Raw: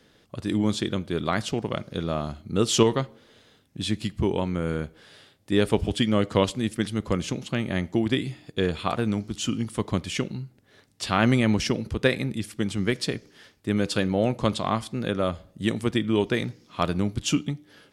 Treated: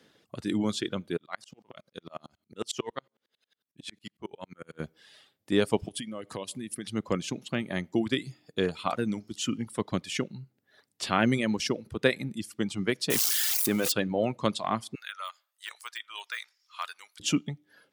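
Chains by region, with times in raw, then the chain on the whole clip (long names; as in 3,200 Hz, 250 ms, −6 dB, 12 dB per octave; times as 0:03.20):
0:01.17–0:04.80: low-shelf EQ 480 Hz −9 dB + tremolo with a ramp in dB swelling 11 Hz, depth 31 dB
0:05.88–0:06.87: downward compressor 4 to 1, threshold −30 dBFS + parametric band 10,000 Hz +12.5 dB 0.4 octaves + notch filter 1,400 Hz, Q 9.2
0:13.10–0:13.92: spike at every zero crossing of −19 dBFS + low-shelf EQ 140 Hz −9 dB + envelope flattener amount 100%
0:14.95–0:17.20: de-essing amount 90% + high-pass filter 1,100 Hz 24 dB per octave + high-shelf EQ 7,700 Hz +3.5 dB
whole clip: high-pass filter 140 Hz 12 dB per octave; reverb reduction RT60 1.2 s; level −2 dB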